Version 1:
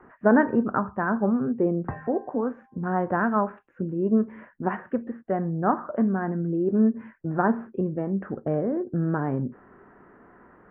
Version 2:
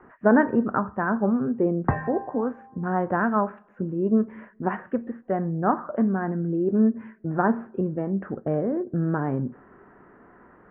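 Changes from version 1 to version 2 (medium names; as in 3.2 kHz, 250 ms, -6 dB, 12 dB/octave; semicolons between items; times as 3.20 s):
background +8.0 dB; reverb: on, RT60 1.6 s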